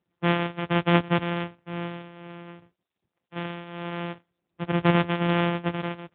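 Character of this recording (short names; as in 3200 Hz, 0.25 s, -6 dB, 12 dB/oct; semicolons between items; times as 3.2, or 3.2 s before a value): a buzz of ramps at a fixed pitch in blocks of 256 samples; tremolo triangle 1.3 Hz, depth 75%; AMR-NB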